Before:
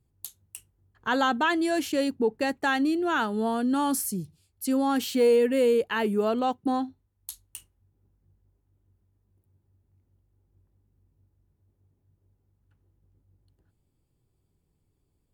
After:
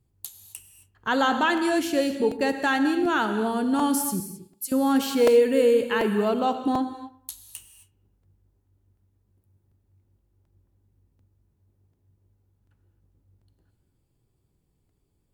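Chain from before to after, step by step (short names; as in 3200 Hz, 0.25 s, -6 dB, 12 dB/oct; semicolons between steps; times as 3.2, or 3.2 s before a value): 4.2–4.72 differentiator; dark delay 0.112 s, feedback 38%, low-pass 2100 Hz, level -18 dB; non-linear reverb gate 0.29 s flat, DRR 7.5 dB; crackling interface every 0.74 s, samples 128, repeat, from 0.83; gain +1.5 dB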